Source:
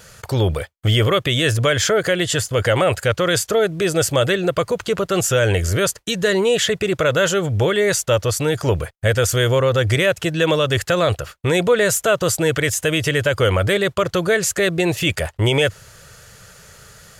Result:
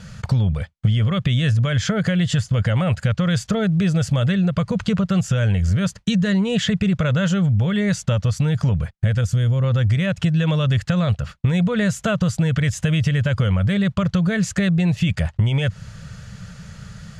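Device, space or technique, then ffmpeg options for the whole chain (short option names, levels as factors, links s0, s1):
jukebox: -filter_complex "[0:a]asettb=1/sr,asplit=3[s0][s1][s2];[s0]atrim=end=9.214[s3];[s1]atrim=start=9.21:end=9.64,asetpts=PTS-STARTPTS,afade=t=in:d=0.004:c=qsin,afade=t=out:st=0.426:d=0.004:c=qsin,equalizer=f=1800:w=0.35:g=-7[s4];[s2]atrim=start=9.636[s5];[s3][s4]acrossfade=d=0.004:c1=hsin:c2=qsin[s6];[s6][s5]acrossfade=d=0.004:c1=qsin:c2=hsin,lowpass=5800,lowshelf=f=260:t=q:w=3:g=9.5,acompressor=threshold=0.158:ratio=6"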